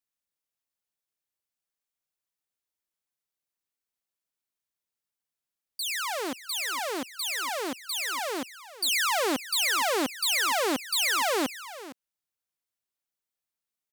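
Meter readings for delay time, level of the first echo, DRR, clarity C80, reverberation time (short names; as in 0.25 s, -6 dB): 0.46 s, -15.5 dB, none, none, none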